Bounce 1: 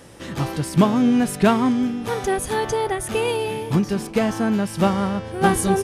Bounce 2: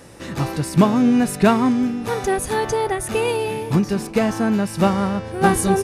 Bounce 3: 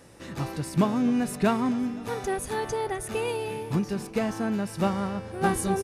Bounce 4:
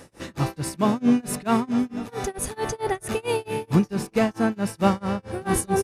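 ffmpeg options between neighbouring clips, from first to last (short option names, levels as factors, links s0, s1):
-af "bandreject=f=3200:w=11,volume=1.19"
-af "aecho=1:1:255|510|765|1020|1275:0.0841|0.0496|0.0293|0.0173|0.0102,volume=0.376"
-af "tremolo=f=4.5:d=0.98,volume=2.51"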